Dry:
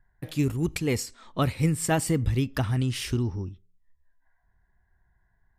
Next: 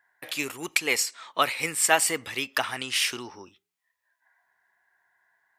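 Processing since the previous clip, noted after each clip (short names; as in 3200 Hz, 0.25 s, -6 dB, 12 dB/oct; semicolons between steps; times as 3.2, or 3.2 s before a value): HPF 810 Hz 12 dB/oct; bell 2400 Hz +3.5 dB 0.68 oct; gain +8 dB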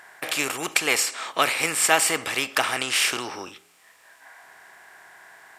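per-bin compression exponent 0.6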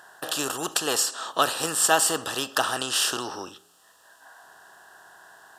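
Butterworth band-stop 2200 Hz, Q 1.9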